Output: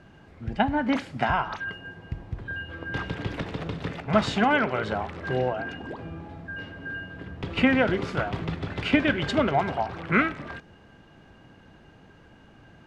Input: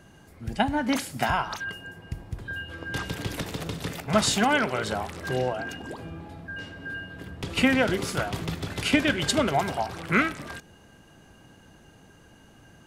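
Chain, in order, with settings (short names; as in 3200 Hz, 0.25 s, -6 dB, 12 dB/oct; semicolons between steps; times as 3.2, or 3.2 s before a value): requantised 10-bit, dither triangular; LPF 2700 Hz 12 dB/oct; gain +1 dB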